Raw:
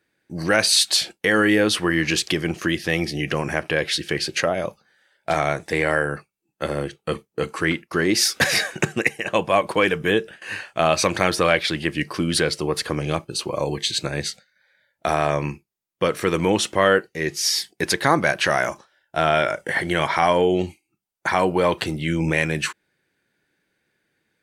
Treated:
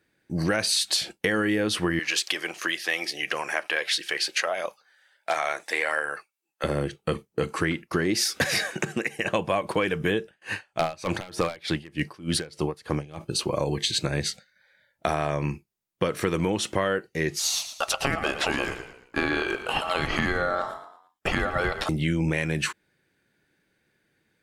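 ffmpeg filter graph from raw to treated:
-filter_complex "[0:a]asettb=1/sr,asplit=3[a][b][c];[a]atrim=end=1.994[d];[b]atrim=start=1.99:end=6.64,asetpts=PTS-STARTPTS,afade=t=in:d=0.004:c=qsin,afade=t=out:st=4.646:d=0.004:c=qsin,highpass=760,aphaser=in_gain=1:out_gain=1:delay=4:decay=0.27:speed=1.5:type=triangular[e];[c]atrim=start=6.636[f];[d][e]acrossfade=d=0.004:c1=hsin:c2=qsin[g];[g][f]acrossfade=d=0.004:c1=qsin:c2=hsin,asettb=1/sr,asplit=3[h][i][j];[h]atrim=end=8.714[k];[i]atrim=start=8.71:end=9.19,asetpts=PTS-STARTPTS,afade=t=in:d=0.004:c=qsin,afade=t=out:st=0.476:d=0.004:c=qsin,highpass=160,acompressor=threshold=-24dB:ratio=2.5:attack=3.2:release=140:knee=1:detection=peak[l];[j]atrim=start=9.186[m];[k][l]acrossfade=d=0.004:c1=hsin:c2=qsin[n];[n][m]acrossfade=d=0.004:c1=qsin:c2=hsin,asettb=1/sr,asplit=3[o][p][q];[o]atrim=end=10.224[r];[p]atrim=start=10.22:end=13.21,asetpts=PTS-STARTPTS,afade=t=in:d=0.004:c=qsin,afade=t=out:st=2.986:d=0.004:c=qsin,equalizer=f=840:w=4.1:g=4.5,aeval=exprs='0.376*(abs(mod(val(0)/0.376+3,4)-2)-1)':c=same,aeval=exprs='val(0)*pow(10,-25*(0.5-0.5*cos(2*PI*3.3*n/s))/20)':c=same[s];[q]atrim=start=13.206[t];[r][s]acrossfade=d=0.004:c1=hsin:c2=qsin[u];[u][t]acrossfade=d=0.004:c1=qsin:c2=hsin,asettb=1/sr,asplit=3[v][w][x];[v]atrim=end=17.394[y];[w]atrim=start=17.39:end=21.89,asetpts=PTS-STARTPTS,afade=t=in:d=0.004:c=qsin,afade=t=out:st=4.496:d=0.004:c=qsin,asplit=5[z][aa][ab][ac][ad];[aa]adelay=113,afreqshift=-32,volume=-13dB[ae];[ab]adelay=226,afreqshift=-64,volume=-21.2dB[af];[ac]adelay=339,afreqshift=-96,volume=-29.4dB[ag];[ad]adelay=452,afreqshift=-128,volume=-37.5dB[ah];[z][ae][af][ag][ah]amix=inputs=5:normalize=0,atrim=end_sample=198450,aeval=exprs='val(0)*sin(2*PI*980*n/s)':c=same[ai];[x]atrim=start=21.886[aj];[y][ai]acrossfade=d=0.004:c1=hsin:c2=qsin[ak];[ak][aj]acrossfade=d=0.004:c1=qsin:c2=hsin,lowshelf=f=240:g=5,acompressor=threshold=-21dB:ratio=6"

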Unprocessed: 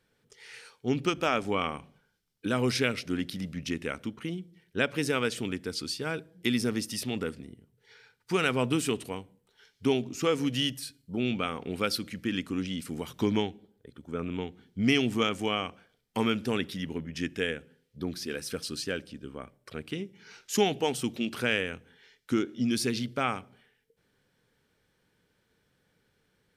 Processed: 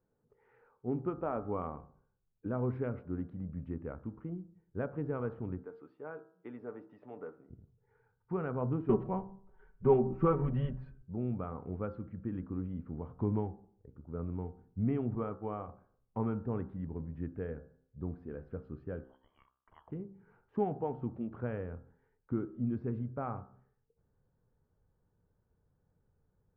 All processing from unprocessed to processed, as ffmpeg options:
-filter_complex "[0:a]asettb=1/sr,asplit=3[a][b][c];[a]atrim=end=5.634[d];[b]atrim=start=5.63:end=7.5,asetpts=PTS-STARTPTS,afade=t=in:d=0.004:c=qsin,afade=t=out:st=1.866:d=0.004:c=qsin,highpass=450,lowpass=5.7k,aecho=1:1:6.8:0.33,atrim=end_sample=82467[e];[c]atrim=start=7.496[f];[d][e]acrossfade=d=0.004:c1=hsin:c2=qsin[g];[g][f]acrossfade=d=0.004:c1=qsin:c2=hsin,asettb=1/sr,asplit=3[h][i][j];[h]atrim=end=8.894[k];[i]atrim=start=8.89:end=11.02,asetpts=PTS-STARTPTS,afade=t=in:d=0.004:c=qsin,afade=t=out:st=2.126:d=0.004:c=qsin,asubboost=boost=9.5:cutoff=53,aecho=1:1:5.3:1,atrim=end_sample=93933,acontrast=76[l];[j]atrim=start=11.016[m];[k][l]acrossfade=d=0.004:c1=hsin:c2=qsin[n];[n][m]acrossfade=d=0.004:c1=qsin:c2=hsin,asettb=1/sr,asplit=3[o][p][q];[o]atrim=end=15.154[r];[p]atrim=start=15.15:end=15.68,asetpts=PTS-STARTPTS,afade=t=in:d=0.004:c=qsin,afade=t=out:st=0.526:d=0.004:c=qsin,agate=range=-33dB:threshold=-32dB:ratio=3:release=100:detection=peak,bass=f=250:g=-4,treble=f=4k:g=-9[s];[q]atrim=start=15.676[t];[r][s]acrossfade=d=0.004:c1=hsin:c2=qsin[u];[u][t]acrossfade=d=0.004:c1=qsin:c2=hsin,asettb=1/sr,asplit=3[v][w][x];[v]atrim=end=19.044[y];[w]atrim=start=19.04:end=19.9,asetpts=PTS-STARTPTS,afade=t=in:d=0.004:c=qsin,afade=t=out:st=0.856:d=0.004:c=qsin,lowpass=f=2.9k:t=q:w=0.5098,lowpass=f=2.9k:t=q:w=0.6013,lowpass=f=2.9k:t=q:w=0.9,lowpass=f=2.9k:t=q:w=2.563,afreqshift=-3400,acrusher=bits=4:mode=log:mix=0:aa=0.000001[z];[x]atrim=start=19.896[aa];[y][z]acrossfade=d=0.004:c1=hsin:c2=qsin[ab];[ab][aa]acrossfade=d=0.004:c1=qsin:c2=hsin,asubboost=boost=4:cutoff=120,lowpass=f=1.1k:w=0.5412,lowpass=f=1.1k:w=1.3066,bandreject=f=65.04:t=h:w=4,bandreject=f=130.08:t=h:w=4,bandreject=f=195.12:t=h:w=4,bandreject=f=260.16:t=h:w=4,bandreject=f=325.2:t=h:w=4,bandreject=f=390.24:t=h:w=4,bandreject=f=455.28:t=h:w=4,bandreject=f=520.32:t=h:w=4,bandreject=f=585.36:t=h:w=4,bandreject=f=650.4:t=h:w=4,bandreject=f=715.44:t=h:w=4,bandreject=f=780.48:t=h:w=4,bandreject=f=845.52:t=h:w=4,bandreject=f=910.56:t=h:w=4,bandreject=f=975.6:t=h:w=4,bandreject=f=1.04064k:t=h:w=4,bandreject=f=1.10568k:t=h:w=4,bandreject=f=1.17072k:t=h:w=4,bandreject=f=1.23576k:t=h:w=4,bandreject=f=1.3008k:t=h:w=4,bandreject=f=1.36584k:t=h:w=4,bandreject=f=1.43088k:t=h:w=4,bandreject=f=1.49592k:t=h:w=4,bandreject=f=1.56096k:t=h:w=4,bandreject=f=1.626k:t=h:w=4,bandreject=f=1.69104k:t=h:w=4,volume=-5dB"

